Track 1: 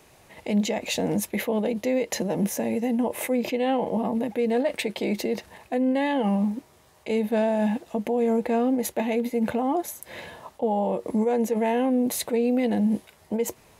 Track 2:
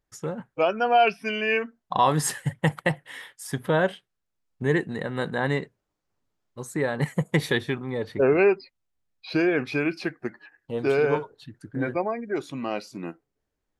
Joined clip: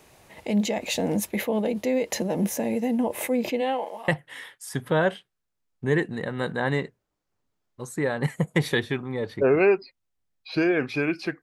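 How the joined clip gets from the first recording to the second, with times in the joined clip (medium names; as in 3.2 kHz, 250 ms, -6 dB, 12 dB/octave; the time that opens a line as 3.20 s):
track 1
3.60–4.08 s: high-pass 280 Hz -> 1.5 kHz
4.08 s: go over to track 2 from 2.86 s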